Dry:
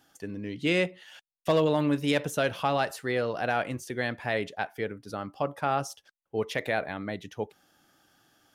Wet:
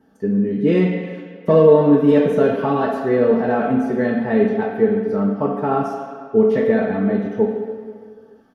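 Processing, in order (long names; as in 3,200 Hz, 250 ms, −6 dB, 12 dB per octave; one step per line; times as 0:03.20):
comb filter 4.5 ms, depth 59%
convolution reverb RT60 2.1 s, pre-delay 3 ms, DRR −0.5 dB
level −8 dB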